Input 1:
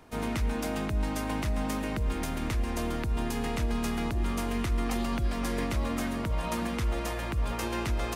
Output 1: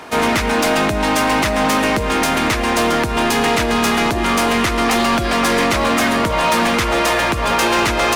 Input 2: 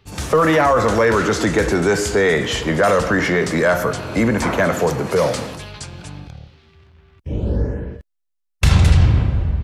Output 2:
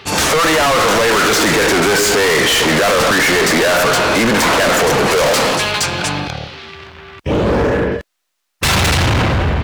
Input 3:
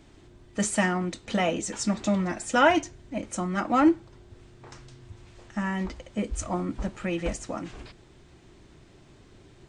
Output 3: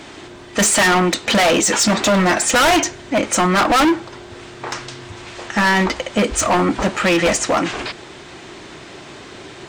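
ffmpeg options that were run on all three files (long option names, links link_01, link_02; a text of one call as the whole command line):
ffmpeg -i in.wav -filter_complex "[0:a]asplit=2[link_01][link_02];[link_02]highpass=frequency=720:poles=1,volume=29dB,asoftclip=type=tanh:threshold=-1.5dB[link_03];[link_01][link_03]amix=inputs=2:normalize=0,lowpass=frequency=5000:poles=1,volume=-6dB,asoftclip=type=hard:threshold=-13.5dB,volume=1.5dB" out.wav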